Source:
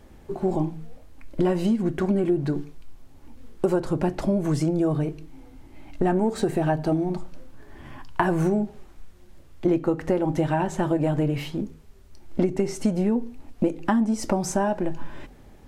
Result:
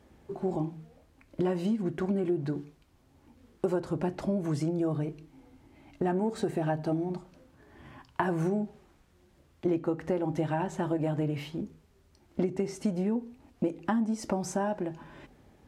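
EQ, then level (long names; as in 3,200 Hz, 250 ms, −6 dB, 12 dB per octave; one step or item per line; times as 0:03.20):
high-pass filter 63 Hz 12 dB per octave
high-shelf EQ 9,300 Hz −5 dB
−6.5 dB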